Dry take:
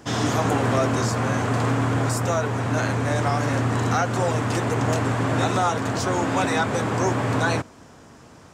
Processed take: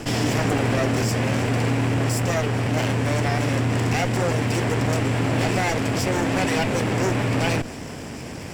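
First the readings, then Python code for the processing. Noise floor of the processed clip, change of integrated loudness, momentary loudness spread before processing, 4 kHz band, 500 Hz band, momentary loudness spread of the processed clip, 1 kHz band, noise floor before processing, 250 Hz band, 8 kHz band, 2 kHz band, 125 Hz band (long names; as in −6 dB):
−34 dBFS, +0.5 dB, 2 LU, +3.0 dB, 0.0 dB, 2 LU, −3.5 dB, −48 dBFS, +1.5 dB, +0.5 dB, +1.0 dB, +1.5 dB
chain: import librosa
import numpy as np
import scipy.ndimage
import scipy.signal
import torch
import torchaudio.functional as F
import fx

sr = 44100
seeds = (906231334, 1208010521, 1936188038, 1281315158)

y = fx.lower_of_two(x, sr, delay_ms=0.38)
y = fx.env_flatten(y, sr, amount_pct=50)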